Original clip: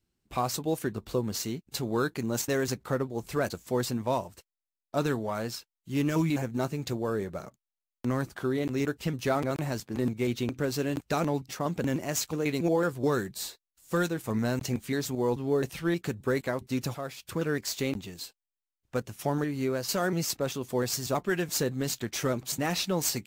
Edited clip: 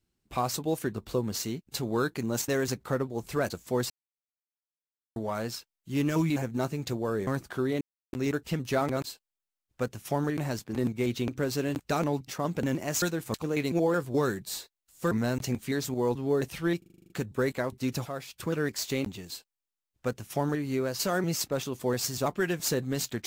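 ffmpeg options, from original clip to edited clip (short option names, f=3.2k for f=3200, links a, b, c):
-filter_complex "[0:a]asplit=18[a][b][c][d][e][f][g][h][i][j][k][l][m][n][o][p][q][r];[a]atrim=end=3.9,asetpts=PTS-STARTPTS,afade=t=out:st=3.896:d=0.004:c=hsin[s];[b]atrim=start=3.9:end=5.16,asetpts=PTS-STARTPTS,volume=0[t];[c]atrim=start=5.16:end=7.272,asetpts=PTS-STARTPTS,afade=t=in:d=0.004:c=hsin[u];[d]atrim=start=8.128:end=8.67,asetpts=PTS-STARTPTS,afade=t=out:st=0.538:d=0.004:c=hsin,apad=pad_dur=0.32[v];[e]atrim=start=8.67:end=9.582,asetpts=PTS-STARTPTS,afade=t=in:d=0.004:c=hsin[w];[f]atrim=start=18.178:end=19.512[x];[g]atrim=start=9.578:end=12.232[y];[h]atrim=start=13.998:end=14.322[z];[i]atrim=start=12.228:end=14.002[aa];[j]atrim=start=14.318:end=16.032[ab];[k]atrim=start=15.988:end=16.032[ac];[l]atrim=start=15.988:end=16.032[ad];[m]atrim=start=15.988:end=16.032[ae];[n]atrim=start=15.988:end=16.032[af];[o]atrim=start=15.988:end=16.032[ag];[p]atrim=start=15.988:end=16.032[ah];[q]atrim=start=15.988:end=16.032[ai];[r]atrim=start=15.988[aj];[s][t][u]concat=n=3:v=0:a=1[ak];[v][w]concat=n=2:v=0:a=1[al];[ak][al]acrossfade=d=0.004:c1=hsin:c2=hsin[am];[am][x]acrossfade=d=0.004:c1=hsin:c2=hsin[an];[an][y]acrossfade=d=0.004:c1=hsin:c2=hsin[ao];[ao][z]acrossfade=d=0.004:c1=hsin:c2=hsin[ap];[ap][aa]acrossfade=d=0.004:c1=hsin:c2=hsin[aq];[aq][ab]acrossfade=d=0.004:c1=hsin:c2=hsin[ar];[ar][ac]acrossfade=d=0.004:c1=hsin:c2=hsin[as];[as][ad]acrossfade=d=0.004:c1=hsin:c2=hsin[at];[at][ae]acrossfade=d=0.004:c1=hsin:c2=hsin[au];[au][af]acrossfade=d=0.004:c1=hsin:c2=hsin[av];[av][ag]acrossfade=d=0.004:c1=hsin:c2=hsin[aw];[aw][ah]acrossfade=d=0.004:c1=hsin:c2=hsin[ax];[ax][ai]acrossfade=d=0.004:c1=hsin:c2=hsin[ay];[ay][aj]acrossfade=d=0.004:c1=hsin:c2=hsin"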